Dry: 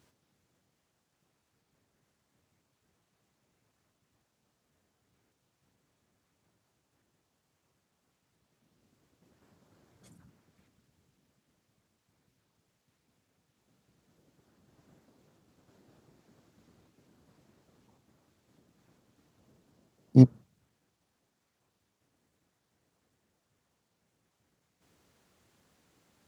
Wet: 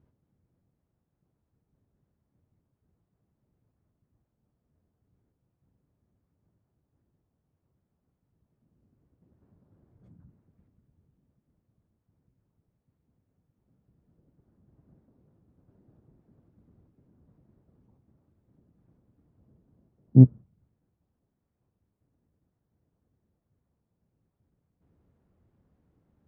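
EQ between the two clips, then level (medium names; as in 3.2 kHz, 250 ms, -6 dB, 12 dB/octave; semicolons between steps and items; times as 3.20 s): tilt EQ -4 dB/octave; treble shelf 2.4 kHz -8.5 dB; treble shelf 5 kHz -8 dB; -7.0 dB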